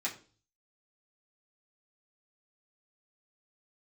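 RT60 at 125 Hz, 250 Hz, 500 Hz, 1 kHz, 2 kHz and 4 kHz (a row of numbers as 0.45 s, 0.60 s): 0.70 s, 0.50 s, 0.45 s, 0.35 s, 0.35 s, 0.40 s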